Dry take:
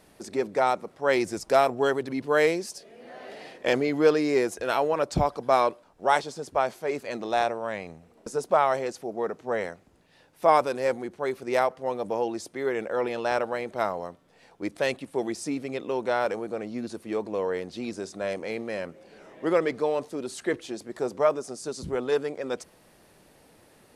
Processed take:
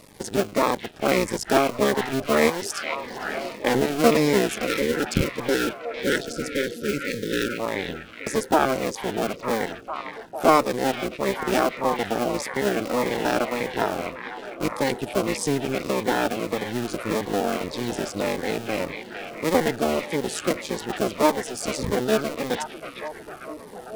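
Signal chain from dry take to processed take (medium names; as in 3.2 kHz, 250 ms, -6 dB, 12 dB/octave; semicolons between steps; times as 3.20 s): cycle switcher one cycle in 2, muted; in parallel at +0.5 dB: compression 16:1, threshold -34 dBFS, peak gain reduction 20.5 dB; on the sum: spectral selection erased 4.67–7.59 s, 570–1300 Hz; short-mantissa float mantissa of 4-bit; repeats whose band climbs or falls 453 ms, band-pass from 2.7 kHz, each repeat -0.7 oct, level -3 dB; Shepard-style phaser falling 1.7 Hz; trim +5.5 dB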